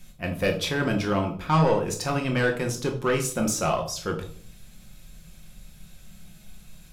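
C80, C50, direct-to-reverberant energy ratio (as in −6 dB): 14.5 dB, 10.0 dB, 2.5 dB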